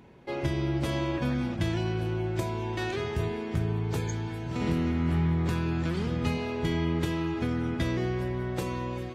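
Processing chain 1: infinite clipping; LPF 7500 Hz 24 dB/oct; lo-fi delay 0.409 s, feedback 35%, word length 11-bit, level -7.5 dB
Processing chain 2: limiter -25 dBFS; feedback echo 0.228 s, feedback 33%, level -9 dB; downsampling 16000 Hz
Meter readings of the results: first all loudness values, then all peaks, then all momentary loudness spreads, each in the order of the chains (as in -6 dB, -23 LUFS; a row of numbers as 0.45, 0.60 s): -29.0, -33.0 LUFS; -22.5, -22.0 dBFS; 1, 3 LU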